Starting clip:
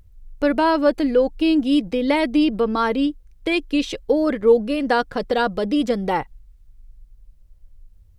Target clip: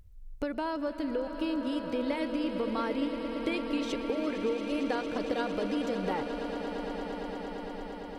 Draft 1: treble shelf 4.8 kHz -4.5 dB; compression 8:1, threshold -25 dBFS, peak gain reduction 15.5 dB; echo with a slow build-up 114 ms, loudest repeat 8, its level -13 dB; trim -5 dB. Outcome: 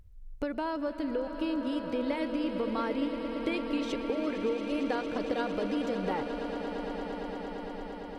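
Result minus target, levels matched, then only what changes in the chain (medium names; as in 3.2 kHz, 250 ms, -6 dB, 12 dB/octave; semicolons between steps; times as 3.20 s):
8 kHz band -3.0 dB
remove: treble shelf 4.8 kHz -4.5 dB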